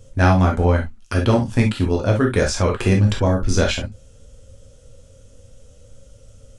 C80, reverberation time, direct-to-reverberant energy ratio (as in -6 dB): 60.0 dB, no single decay rate, 0.5 dB